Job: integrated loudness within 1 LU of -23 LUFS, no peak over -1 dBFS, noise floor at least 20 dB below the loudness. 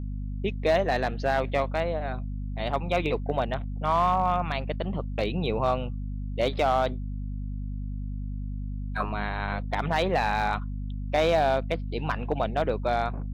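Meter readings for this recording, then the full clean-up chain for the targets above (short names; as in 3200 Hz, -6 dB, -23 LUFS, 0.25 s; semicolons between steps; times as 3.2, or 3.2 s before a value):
clipped 0.4%; flat tops at -15.5 dBFS; hum 50 Hz; harmonics up to 250 Hz; hum level -30 dBFS; loudness -28.0 LUFS; peak -15.5 dBFS; loudness target -23.0 LUFS
-> clip repair -15.5 dBFS; notches 50/100/150/200/250 Hz; gain +5 dB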